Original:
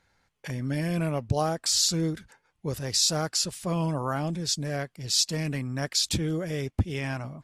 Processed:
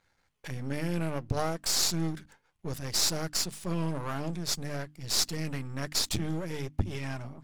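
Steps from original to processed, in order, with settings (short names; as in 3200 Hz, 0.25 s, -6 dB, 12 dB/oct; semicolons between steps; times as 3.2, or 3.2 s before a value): half-wave gain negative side -12 dB; notches 50/100/150/200/250/300 Hz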